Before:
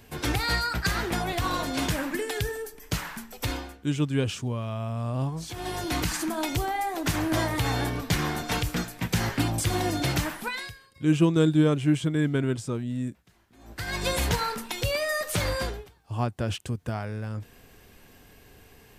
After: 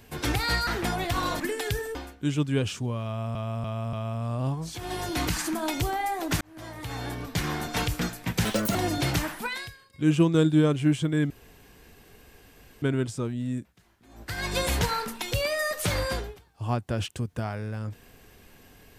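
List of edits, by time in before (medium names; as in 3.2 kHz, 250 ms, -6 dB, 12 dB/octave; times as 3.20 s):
0.67–0.95 s: delete
1.68–2.10 s: delete
2.65–3.57 s: delete
4.68–4.97 s: loop, 4 plays
7.16–8.54 s: fade in
9.20–9.77 s: speed 189%
12.32 s: insert room tone 1.52 s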